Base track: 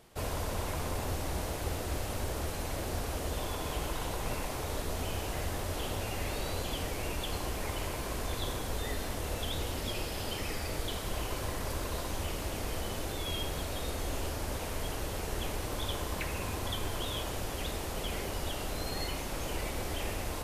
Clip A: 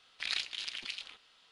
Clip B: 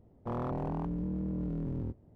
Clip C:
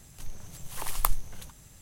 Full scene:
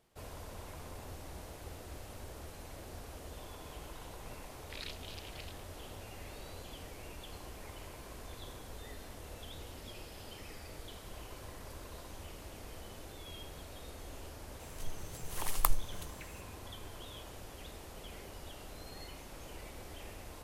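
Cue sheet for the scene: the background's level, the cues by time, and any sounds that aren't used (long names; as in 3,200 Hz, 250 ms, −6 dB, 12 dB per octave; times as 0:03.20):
base track −12.5 dB
0:04.50: mix in A −11.5 dB
0:14.60: mix in C −3 dB
not used: B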